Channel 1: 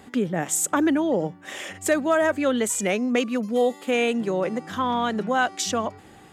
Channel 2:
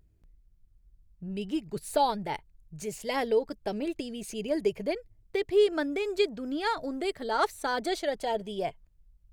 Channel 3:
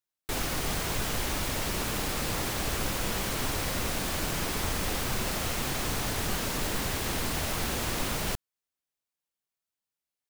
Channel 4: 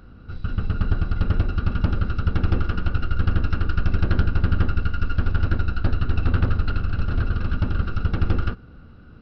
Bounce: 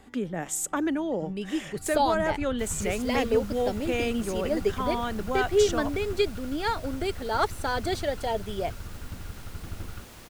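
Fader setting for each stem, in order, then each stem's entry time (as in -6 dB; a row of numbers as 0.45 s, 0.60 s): -6.5 dB, +1.0 dB, -16.5 dB, -17.0 dB; 0.00 s, 0.00 s, 2.30 s, 1.50 s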